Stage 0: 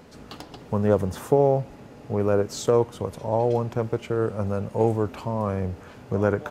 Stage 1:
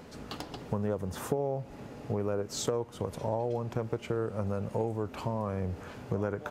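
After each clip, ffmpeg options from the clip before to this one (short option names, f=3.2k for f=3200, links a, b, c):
-af "acompressor=threshold=-28dB:ratio=6"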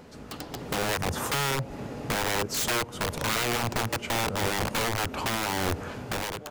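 -af "aeval=exprs='(mod(28.2*val(0)+1,2)-1)/28.2':c=same,dynaudnorm=f=160:g=7:m=8dB"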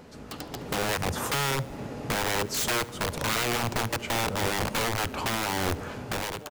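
-af "aecho=1:1:72|144|216|288|360:0.0794|0.0477|0.0286|0.0172|0.0103"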